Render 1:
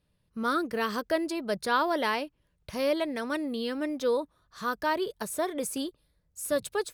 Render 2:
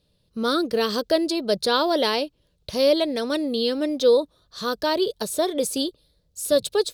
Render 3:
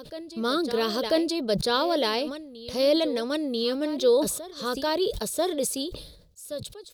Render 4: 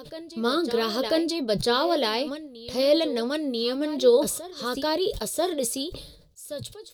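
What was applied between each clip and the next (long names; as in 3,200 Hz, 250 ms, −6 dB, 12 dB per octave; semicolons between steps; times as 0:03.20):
octave-band graphic EQ 500/1,000/2,000/4,000 Hz +6/−4/−7/+11 dB; level +5 dB
fade-out on the ending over 1.52 s; backwards echo 990 ms −15 dB; level that may fall only so fast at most 67 dB per second; level −3.5 dB
flanger 0.81 Hz, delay 6.5 ms, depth 2.6 ms, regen +66%; level +5 dB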